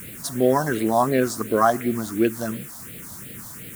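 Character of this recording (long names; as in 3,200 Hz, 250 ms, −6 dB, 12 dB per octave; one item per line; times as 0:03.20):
a quantiser's noise floor 8 bits, dither triangular
phaser sweep stages 4, 2.8 Hz, lowest notch 420–1,000 Hz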